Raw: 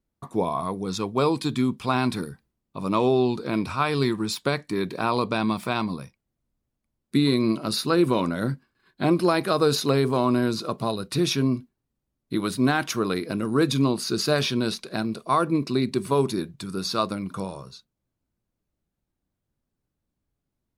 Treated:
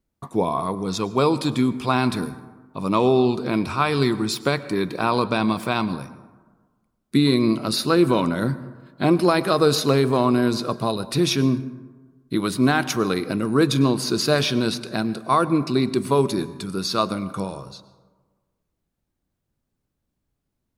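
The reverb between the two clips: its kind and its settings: plate-style reverb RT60 1.4 s, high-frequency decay 0.4×, pre-delay 90 ms, DRR 15.5 dB; trim +3 dB

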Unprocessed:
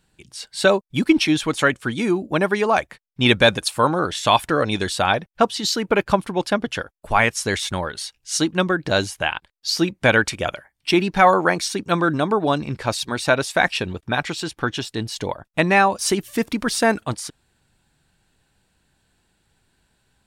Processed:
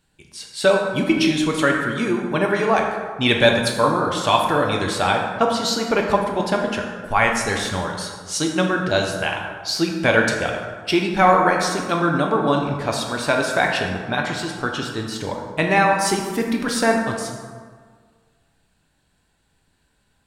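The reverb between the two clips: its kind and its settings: plate-style reverb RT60 1.7 s, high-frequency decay 0.5×, DRR 0.5 dB; trim -2.5 dB

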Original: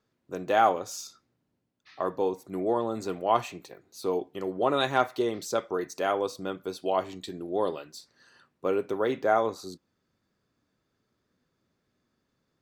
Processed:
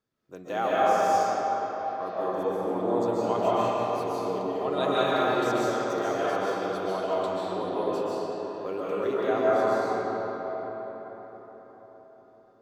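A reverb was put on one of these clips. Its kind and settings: algorithmic reverb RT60 5 s, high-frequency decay 0.55×, pre-delay 100 ms, DRR -9.5 dB; trim -8 dB

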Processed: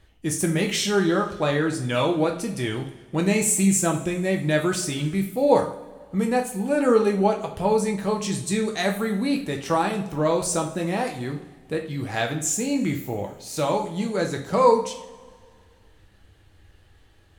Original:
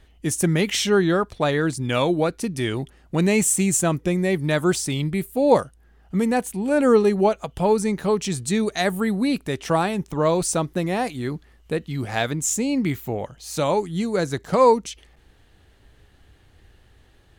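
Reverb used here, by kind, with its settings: two-slope reverb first 0.43 s, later 1.9 s, from -18 dB, DRR 1.5 dB; trim -3.5 dB

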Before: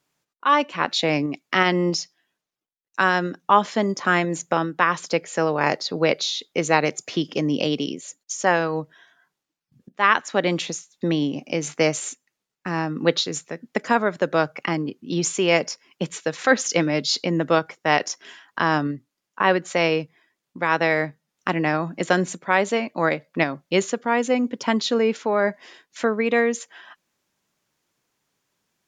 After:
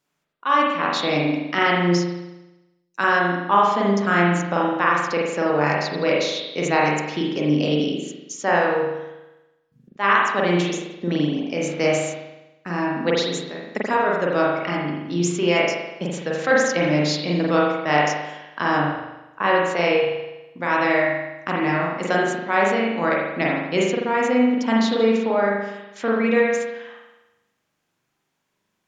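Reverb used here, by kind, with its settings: spring tank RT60 1 s, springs 40 ms, chirp 45 ms, DRR -4 dB; trim -4 dB

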